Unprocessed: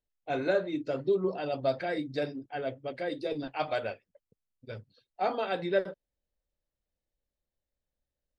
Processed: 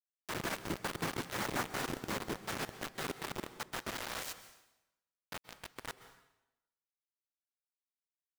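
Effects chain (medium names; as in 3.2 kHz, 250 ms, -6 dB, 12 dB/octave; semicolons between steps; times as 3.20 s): Doppler pass-by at 1.70 s, 19 m/s, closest 1.8 m; tilt EQ -3 dB/octave; compression 12:1, threshold -49 dBFS, peak gain reduction 24.5 dB; flange 0.25 Hz, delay 7.7 ms, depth 4.6 ms, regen -88%; painted sound rise, 3.85–4.33 s, 300–2900 Hz -60 dBFS; noise-vocoded speech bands 3; bit crusher 9-bit; plate-style reverb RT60 0.93 s, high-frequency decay 0.9×, pre-delay 115 ms, DRR 12.5 dB; trim +18 dB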